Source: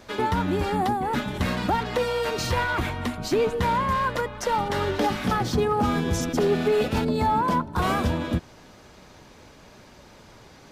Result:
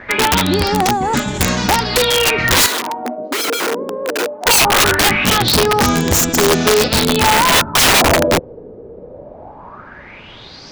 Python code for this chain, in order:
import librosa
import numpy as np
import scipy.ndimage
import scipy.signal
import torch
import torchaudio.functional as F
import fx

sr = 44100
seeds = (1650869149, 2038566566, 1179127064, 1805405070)

y = fx.filter_lfo_lowpass(x, sr, shape='sine', hz=0.2, low_hz=450.0, high_hz=7200.0, q=7.0)
y = (np.mod(10.0 ** (15.0 / 20.0) * y + 1.0, 2.0) - 1.0) / 10.0 ** (15.0 / 20.0)
y = fx.ladder_highpass(y, sr, hz=240.0, resonance_pct=45, at=(2.66, 4.46))
y = y * librosa.db_to_amplitude(9.0)